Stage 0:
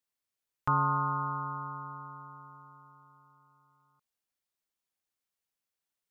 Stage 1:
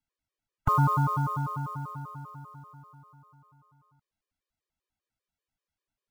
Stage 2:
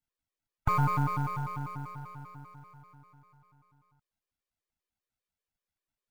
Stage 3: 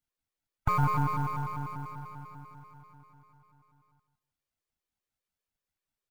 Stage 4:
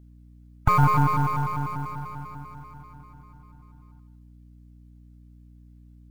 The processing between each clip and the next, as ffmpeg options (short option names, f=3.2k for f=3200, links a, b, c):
-af "aemphasis=mode=reproduction:type=bsi,acrusher=bits=7:mode=log:mix=0:aa=0.000001,afftfilt=real='re*gt(sin(2*PI*5.1*pts/sr)*(1-2*mod(floor(b*sr/1024/320),2)),0)':imag='im*gt(sin(2*PI*5.1*pts/sr)*(1-2*mod(floor(b*sr/1024/320),2)),0)':win_size=1024:overlap=0.75,volume=5dB"
-af "aeval=exprs='if(lt(val(0),0),0.447*val(0),val(0))':c=same,volume=-1dB"
-filter_complex "[0:a]asplit=2[a][b];[b]adelay=159,lowpass=f=3.9k:p=1,volume=-10dB,asplit=2[c][d];[d]adelay=159,lowpass=f=3.9k:p=1,volume=0.21,asplit=2[e][f];[f]adelay=159,lowpass=f=3.9k:p=1,volume=0.21[g];[a][c][e][g]amix=inputs=4:normalize=0"
-af "aeval=exprs='val(0)+0.00158*(sin(2*PI*60*n/s)+sin(2*PI*2*60*n/s)/2+sin(2*PI*3*60*n/s)/3+sin(2*PI*4*60*n/s)/4+sin(2*PI*5*60*n/s)/5)':c=same,volume=7.5dB"